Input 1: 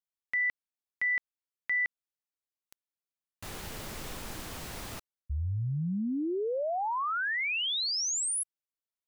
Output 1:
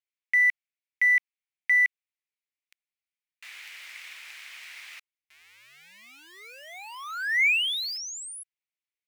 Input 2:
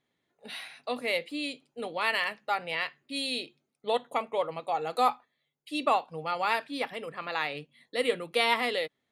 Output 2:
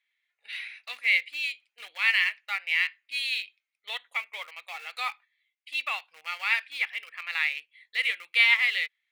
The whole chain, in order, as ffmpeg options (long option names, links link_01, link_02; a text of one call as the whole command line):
ffmpeg -i in.wav -filter_complex "[0:a]lowpass=frequency=3700:poles=1,aeval=exprs='0.282*(cos(1*acos(clip(val(0)/0.282,-1,1)))-cos(1*PI/2))+0.00316*(cos(4*acos(clip(val(0)/0.282,-1,1)))-cos(4*PI/2))':channel_layout=same,asplit=2[link_01][link_02];[link_02]aeval=exprs='val(0)*gte(abs(val(0)),0.0237)':channel_layout=same,volume=-9.5dB[link_03];[link_01][link_03]amix=inputs=2:normalize=0,highpass=frequency=2200:width_type=q:width=3.5,volume=-1dB" out.wav